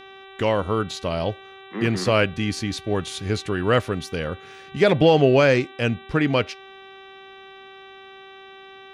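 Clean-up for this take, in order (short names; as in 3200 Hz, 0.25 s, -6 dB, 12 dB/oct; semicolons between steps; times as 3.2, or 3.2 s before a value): de-hum 386.8 Hz, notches 10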